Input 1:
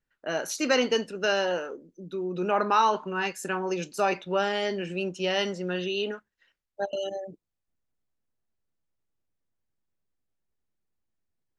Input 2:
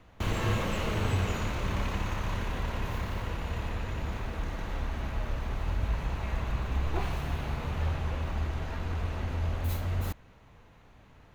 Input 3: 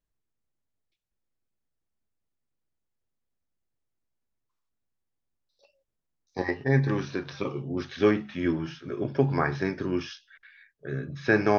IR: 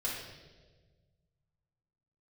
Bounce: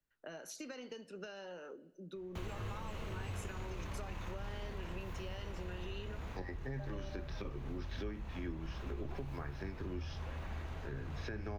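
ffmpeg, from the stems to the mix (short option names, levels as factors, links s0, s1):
-filter_complex "[0:a]acompressor=threshold=0.0251:ratio=6,volume=0.398,asplit=2[s0][s1];[s1]volume=0.0708[s2];[1:a]adelay=2150,volume=0.376[s3];[2:a]alimiter=limit=0.178:level=0:latency=1:release=467,volume=0.531[s4];[3:a]atrim=start_sample=2205[s5];[s2][s5]afir=irnorm=-1:irlink=0[s6];[s0][s3][s4][s6]amix=inputs=4:normalize=0,acrossover=split=99|230[s7][s8][s9];[s7]acompressor=threshold=0.00891:ratio=4[s10];[s8]acompressor=threshold=0.00251:ratio=4[s11];[s9]acompressor=threshold=0.00501:ratio=4[s12];[s10][s11][s12]amix=inputs=3:normalize=0"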